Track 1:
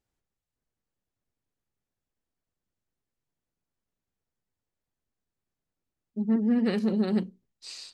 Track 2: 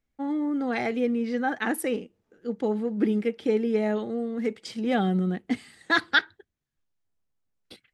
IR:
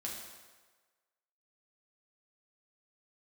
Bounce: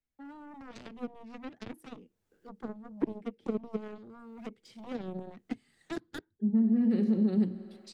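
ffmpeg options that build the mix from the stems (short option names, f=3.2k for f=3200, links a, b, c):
-filter_complex "[0:a]dynaudnorm=f=370:g=9:m=12dB,adelay=250,volume=3dB,asplit=2[a][b];[b]volume=-15.5dB[c];[1:a]aeval=exprs='0.422*(cos(1*acos(clip(val(0)/0.422,-1,1)))-cos(1*PI/2))+0.075*(cos(7*acos(clip(val(0)/0.422,-1,1)))-cos(7*PI/2))':c=same,volume=0.5dB,asplit=2[d][e];[e]apad=whole_len=361003[f];[a][f]sidechaincompress=threshold=-44dB:ratio=4:attack=7.3:release=744[g];[2:a]atrim=start_sample=2205[h];[c][h]afir=irnorm=-1:irlink=0[i];[g][d][i]amix=inputs=3:normalize=0,acrossover=split=100|430[j][k][l];[j]acompressor=threshold=-54dB:ratio=4[m];[k]acompressor=threshold=-24dB:ratio=4[n];[l]acompressor=threshold=-51dB:ratio=4[o];[m][n][o]amix=inputs=3:normalize=0"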